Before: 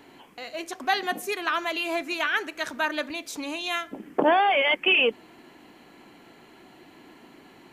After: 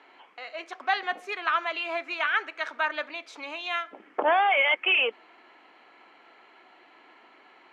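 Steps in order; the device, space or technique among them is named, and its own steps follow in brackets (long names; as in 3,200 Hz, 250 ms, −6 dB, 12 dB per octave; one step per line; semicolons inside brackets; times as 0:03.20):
tin-can telephone (band-pass filter 630–3,000 Hz; hollow resonant body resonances 1,300/2,200 Hz, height 7 dB)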